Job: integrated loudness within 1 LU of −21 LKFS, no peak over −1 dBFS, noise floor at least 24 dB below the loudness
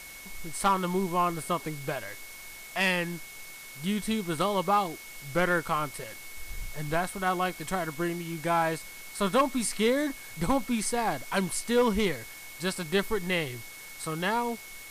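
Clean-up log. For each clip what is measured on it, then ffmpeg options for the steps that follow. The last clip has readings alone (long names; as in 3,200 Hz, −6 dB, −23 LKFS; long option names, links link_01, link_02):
interfering tone 2,200 Hz; level of the tone −46 dBFS; background noise floor −45 dBFS; target noise floor −53 dBFS; integrated loudness −29.0 LKFS; sample peak −15.5 dBFS; target loudness −21.0 LKFS
→ -af "bandreject=frequency=2200:width=30"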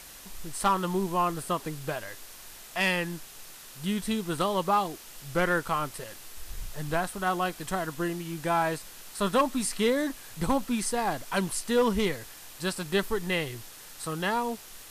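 interfering tone none found; background noise floor −47 dBFS; target noise floor −54 dBFS
→ -af "afftdn=noise_reduction=7:noise_floor=-47"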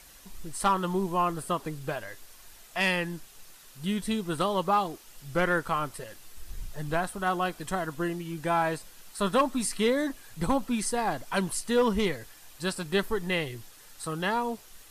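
background noise floor −52 dBFS; target noise floor −54 dBFS
→ -af "afftdn=noise_reduction=6:noise_floor=-52"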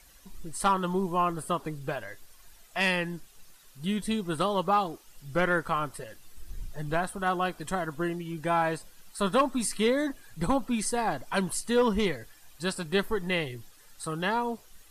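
background noise floor −56 dBFS; integrated loudness −29.5 LKFS; sample peak −15.5 dBFS; target loudness −21.0 LKFS
→ -af "volume=8.5dB"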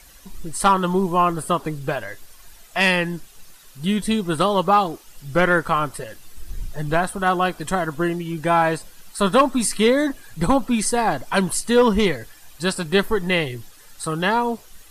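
integrated loudness −21.0 LKFS; sample peak −7.0 dBFS; background noise floor −47 dBFS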